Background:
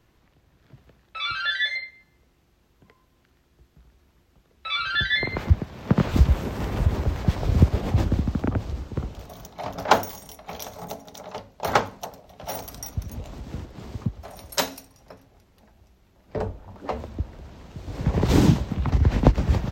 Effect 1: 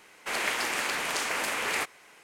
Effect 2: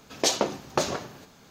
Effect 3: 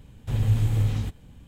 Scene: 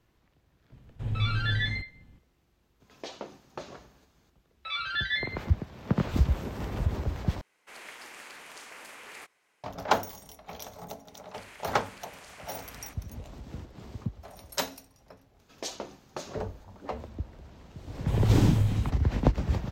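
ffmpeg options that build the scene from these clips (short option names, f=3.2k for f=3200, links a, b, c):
-filter_complex "[3:a]asplit=2[a][b];[2:a]asplit=2[c][d];[1:a]asplit=2[e][f];[0:a]volume=-6.5dB[g];[a]lowpass=f=2.2k:p=1[h];[c]acrossover=split=4300[i][j];[j]acompressor=threshold=-46dB:ratio=4:attack=1:release=60[k];[i][k]amix=inputs=2:normalize=0[l];[f]acompressor=threshold=-33dB:ratio=6:attack=3.2:release=140:knee=1:detection=peak[m];[g]asplit=2[n][o];[n]atrim=end=7.414[p];[e]atrim=end=2.23,asetpts=PTS-STARTPTS,volume=-16.5dB[q];[o]atrim=start=9.636[r];[h]atrim=end=1.47,asetpts=PTS-STARTPTS,volume=-7dB,afade=t=in:d=0.004:c=hsin,afade=t=out:st=1.466:d=0.004:c=hsin,adelay=720[s];[l]atrim=end=1.5,asetpts=PTS-STARTPTS,volume=-15dB,afade=t=in:d=0.004:c=hsin,afade=t=out:st=1.496:d=0.004:c=hsin,adelay=2800[t];[m]atrim=end=2.23,asetpts=PTS-STARTPTS,volume=-13dB,afade=t=in:d=0.004:c=hsin,afade=t=out:st=2.226:d=0.004:c=hsin,adelay=11080[u];[d]atrim=end=1.5,asetpts=PTS-STARTPTS,volume=-13.5dB,afade=t=in:d=0.004:c=hsin,afade=t=out:st=1.496:d=0.004:c=hsin,adelay=15390[v];[b]atrim=end=1.47,asetpts=PTS-STARTPTS,volume=-3dB,afade=t=in:d=0.004:c=hsin,afade=t=out:st=1.466:d=0.004:c=hsin,adelay=784980S[w];[p][q]acrossfade=d=0.004:c1=hsin:c2=hsin[x];[x][r]acrossfade=d=0.004:c1=hsin:c2=hsin[y];[y][s][t][u][v][w]amix=inputs=6:normalize=0"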